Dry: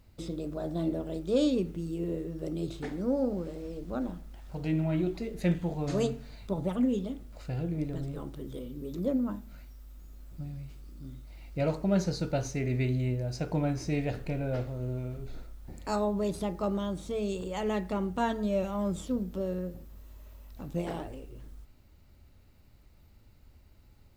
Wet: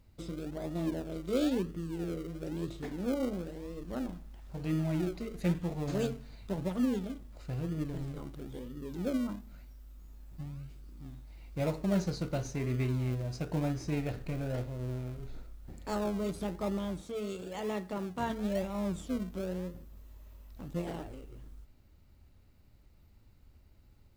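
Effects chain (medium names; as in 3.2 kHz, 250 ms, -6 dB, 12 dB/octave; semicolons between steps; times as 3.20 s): 17.01–18.30 s: high-pass 210 Hz 6 dB/octave; in parallel at -9 dB: decimation with a swept rate 40×, swing 60% 1 Hz; on the sum: trim -5 dB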